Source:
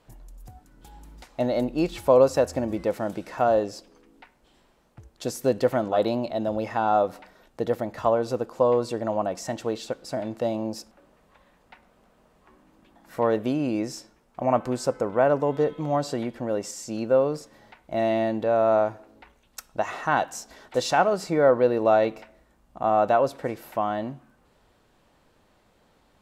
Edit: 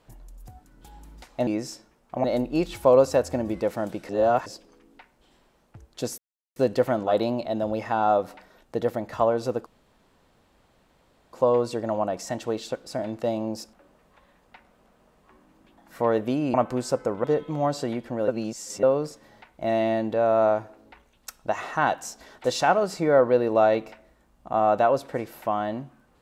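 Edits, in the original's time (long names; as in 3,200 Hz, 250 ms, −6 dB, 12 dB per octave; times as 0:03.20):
0:03.32–0:03.69: reverse
0:05.41: splice in silence 0.38 s
0:08.51: splice in room tone 1.67 s
0:13.72–0:14.49: move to 0:01.47
0:15.19–0:15.54: remove
0:16.58–0:17.13: reverse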